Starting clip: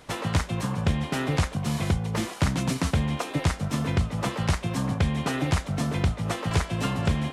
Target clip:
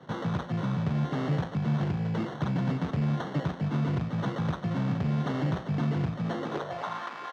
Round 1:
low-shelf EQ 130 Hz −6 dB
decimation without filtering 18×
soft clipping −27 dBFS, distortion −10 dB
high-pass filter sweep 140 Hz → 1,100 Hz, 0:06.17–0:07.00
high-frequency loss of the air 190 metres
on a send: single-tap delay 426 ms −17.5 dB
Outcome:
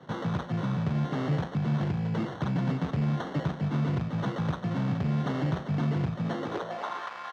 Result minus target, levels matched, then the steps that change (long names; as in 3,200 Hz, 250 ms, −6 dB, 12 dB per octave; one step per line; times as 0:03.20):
echo 248 ms early
change: single-tap delay 674 ms −17.5 dB